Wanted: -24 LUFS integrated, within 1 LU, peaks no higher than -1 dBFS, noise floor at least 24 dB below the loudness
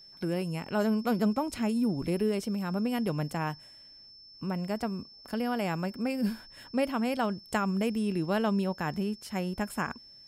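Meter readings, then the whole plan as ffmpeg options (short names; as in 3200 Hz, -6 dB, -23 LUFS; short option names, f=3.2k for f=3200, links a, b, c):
steady tone 5300 Hz; tone level -50 dBFS; loudness -31.0 LUFS; peak -13.5 dBFS; loudness target -24.0 LUFS
-> -af "bandreject=f=5.3k:w=30"
-af "volume=7dB"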